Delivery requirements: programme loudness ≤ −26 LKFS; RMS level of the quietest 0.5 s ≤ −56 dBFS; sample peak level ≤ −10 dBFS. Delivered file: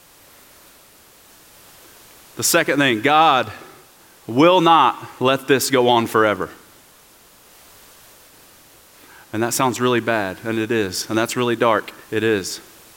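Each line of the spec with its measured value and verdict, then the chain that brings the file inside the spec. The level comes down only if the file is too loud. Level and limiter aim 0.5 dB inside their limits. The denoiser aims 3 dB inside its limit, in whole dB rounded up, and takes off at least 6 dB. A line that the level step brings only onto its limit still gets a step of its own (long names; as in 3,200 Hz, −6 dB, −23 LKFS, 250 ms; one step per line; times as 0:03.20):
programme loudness −17.5 LKFS: out of spec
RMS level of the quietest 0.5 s −49 dBFS: out of spec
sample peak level −3.0 dBFS: out of spec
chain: level −9 dB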